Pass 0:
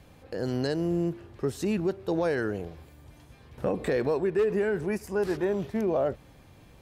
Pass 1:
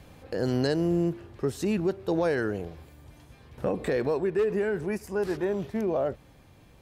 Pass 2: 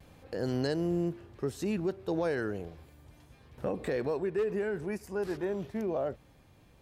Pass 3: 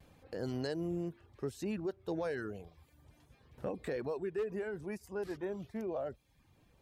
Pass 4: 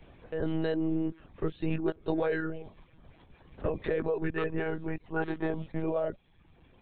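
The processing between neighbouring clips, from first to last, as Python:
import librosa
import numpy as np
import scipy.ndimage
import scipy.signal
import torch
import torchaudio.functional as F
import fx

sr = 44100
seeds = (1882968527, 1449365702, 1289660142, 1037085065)

y1 = fx.rider(x, sr, range_db=5, speed_s=2.0)
y2 = fx.vibrato(y1, sr, rate_hz=0.34, depth_cents=13.0)
y2 = F.gain(torch.from_numpy(y2), -5.0).numpy()
y3 = fx.dereverb_blind(y2, sr, rt60_s=0.6)
y3 = F.gain(torch.from_numpy(y3), -5.0).numpy()
y4 = fx.lpc_monotone(y3, sr, seeds[0], pitch_hz=160.0, order=16)
y4 = F.gain(torch.from_numpy(y4), 7.5).numpy()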